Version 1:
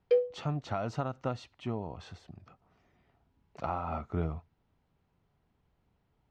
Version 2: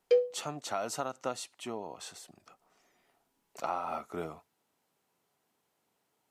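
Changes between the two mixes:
speech: add high-pass 320 Hz 12 dB/octave; master: remove distance through air 220 m

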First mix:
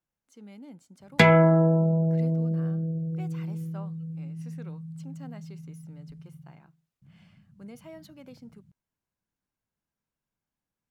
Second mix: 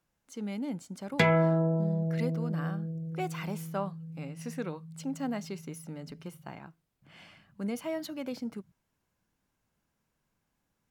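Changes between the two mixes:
speech +11.0 dB; background -6.5 dB

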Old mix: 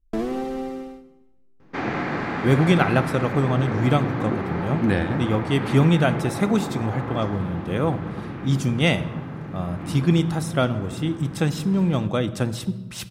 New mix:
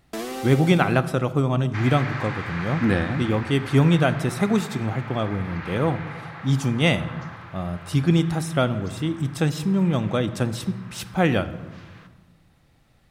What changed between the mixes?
speech: entry -2.00 s; first sound: add tilt EQ +4 dB/octave; second sound: add high-pass 1.2 kHz 12 dB/octave

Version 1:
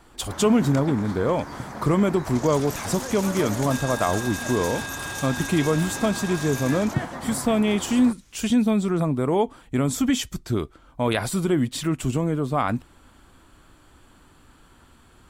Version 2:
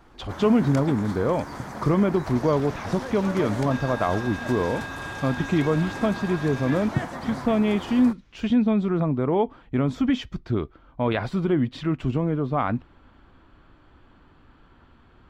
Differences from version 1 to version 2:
speech: add distance through air 270 m; second sound: add distance through air 250 m

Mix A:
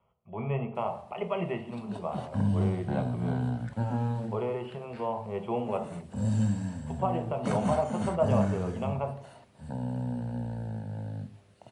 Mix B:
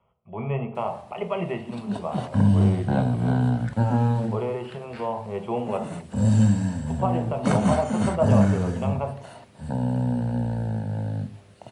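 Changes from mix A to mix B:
speech +3.5 dB; background +8.5 dB

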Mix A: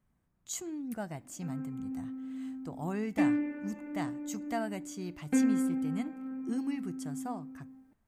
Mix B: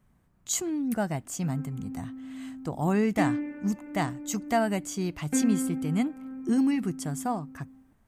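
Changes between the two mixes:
speech +10.0 dB; reverb: off

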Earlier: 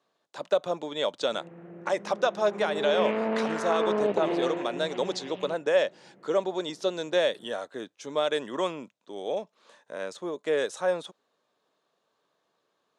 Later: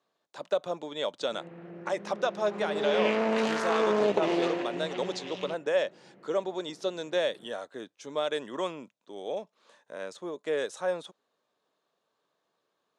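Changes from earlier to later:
speech -3.5 dB; background: remove distance through air 360 m

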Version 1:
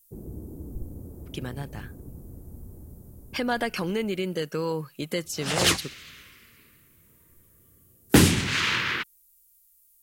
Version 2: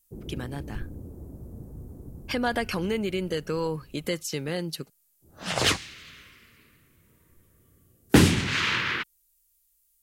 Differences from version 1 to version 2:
speech: entry -1.05 s; background: add treble shelf 8.1 kHz -9.5 dB

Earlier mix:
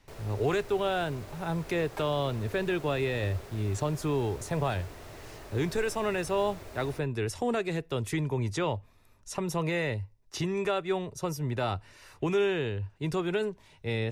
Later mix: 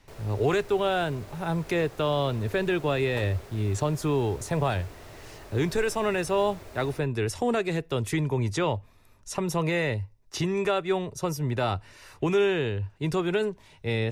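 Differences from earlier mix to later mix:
speech +3.5 dB; second sound: entry +1.20 s

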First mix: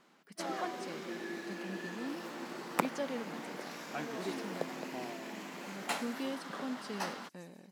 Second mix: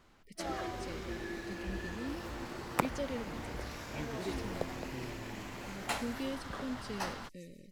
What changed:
speech: add brick-wall FIR band-stop 600–1800 Hz; master: remove brick-wall FIR high-pass 150 Hz

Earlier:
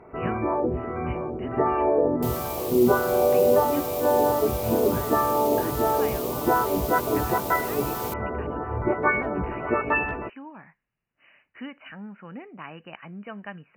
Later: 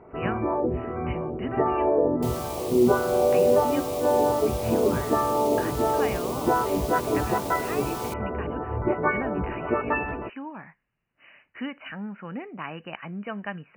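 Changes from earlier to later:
speech +4.5 dB; first sound: add treble shelf 2.4 kHz -11 dB; master: add peaking EQ 14 kHz -13 dB 0.27 oct

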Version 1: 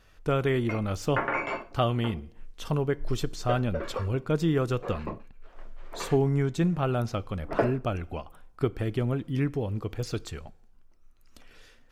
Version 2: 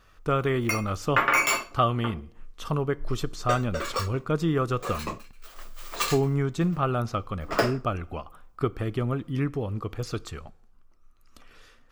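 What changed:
background: remove low-pass 1.3 kHz 12 dB/octave; master: add peaking EQ 1.2 kHz +10 dB 0.29 oct

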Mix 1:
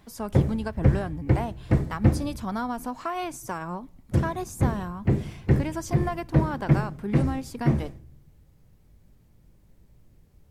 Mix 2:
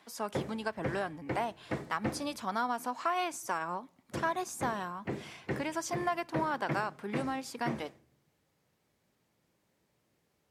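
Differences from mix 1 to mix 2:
background -4.0 dB; master: add frequency weighting A

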